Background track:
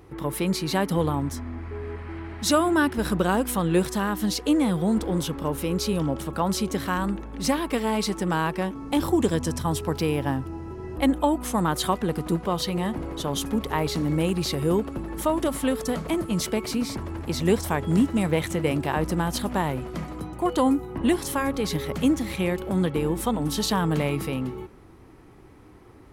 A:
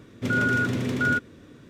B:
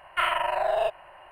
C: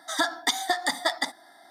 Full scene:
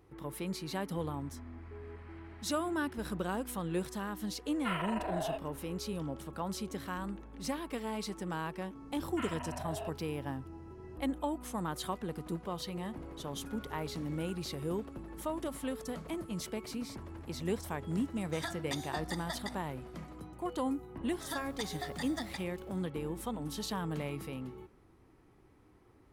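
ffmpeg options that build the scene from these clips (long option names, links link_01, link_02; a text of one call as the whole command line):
ffmpeg -i bed.wav -i cue0.wav -i cue1.wav -i cue2.wav -filter_complex "[2:a]asplit=2[link_01][link_02];[3:a]asplit=2[link_03][link_04];[0:a]volume=-13dB[link_05];[1:a]acompressor=threshold=-44dB:ratio=6:attack=3.2:release=140:knee=1:detection=peak[link_06];[link_04]acrusher=bits=7:mix=0:aa=0.000001[link_07];[link_01]atrim=end=1.31,asetpts=PTS-STARTPTS,volume=-12dB,afade=type=in:duration=0.004:curve=hsin,afade=type=out:start_time=1.306:duration=0.004:curve=hsin,adelay=4480[link_08];[link_02]atrim=end=1.31,asetpts=PTS-STARTPTS,volume=-17.5dB,afade=type=in:duration=0.004:curve=hsin,afade=type=out:start_time=1.306:duration=0.004:curve=hsin,adelay=9000[link_09];[link_06]atrim=end=1.69,asetpts=PTS-STARTPTS,volume=-9dB,afade=type=in:duration=0.004:curve=hsin,afade=type=out:start_time=1.686:duration=0.004:curve=hsin,adelay=13170[link_10];[link_03]atrim=end=1.7,asetpts=PTS-STARTPTS,volume=-15.5dB,afade=type=in:duration=0.004:curve=hsin,afade=type=out:start_time=1.696:duration=0.004:curve=hsin,adelay=18240[link_11];[link_07]atrim=end=1.7,asetpts=PTS-STARTPTS,volume=-16.5dB,afade=type=in:duration=0.004:curve=hsin,afade=type=out:start_time=1.696:duration=0.004:curve=hsin,adelay=21120[link_12];[link_05][link_08][link_09][link_10][link_11][link_12]amix=inputs=6:normalize=0" out.wav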